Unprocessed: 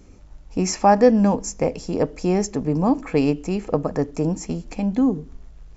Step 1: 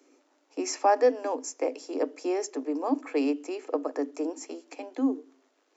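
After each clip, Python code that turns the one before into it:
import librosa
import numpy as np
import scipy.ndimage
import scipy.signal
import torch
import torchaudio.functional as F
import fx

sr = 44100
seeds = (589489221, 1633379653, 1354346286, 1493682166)

y = scipy.signal.sosfilt(scipy.signal.cheby1(10, 1.0, 260.0, 'highpass', fs=sr, output='sos'), x)
y = y * 10.0 ** (-6.0 / 20.0)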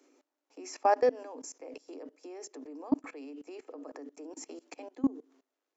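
y = fx.level_steps(x, sr, step_db=22)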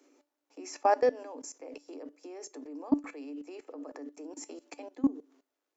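y = fx.comb_fb(x, sr, f0_hz=290.0, decay_s=0.2, harmonics='all', damping=0.0, mix_pct=50)
y = y * 10.0 ** (5.5 / 20.0)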